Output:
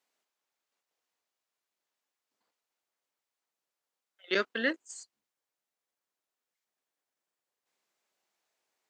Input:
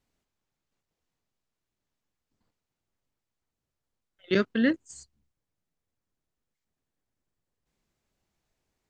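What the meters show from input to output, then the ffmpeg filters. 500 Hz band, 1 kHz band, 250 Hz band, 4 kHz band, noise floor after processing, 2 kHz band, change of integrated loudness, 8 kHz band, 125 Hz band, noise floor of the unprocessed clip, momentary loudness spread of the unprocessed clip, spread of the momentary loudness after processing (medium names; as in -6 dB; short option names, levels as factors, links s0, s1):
-4.5 dB, +1.0 dB, -12.0 dB, +1.0 dB, under -85 dBFS, +1.0 dB, -5.0 dB, +1.0 dB, under -15 dB, under -85 dBFS, 6 LU, 17 LU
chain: -af "highpass=550,volume=1.12"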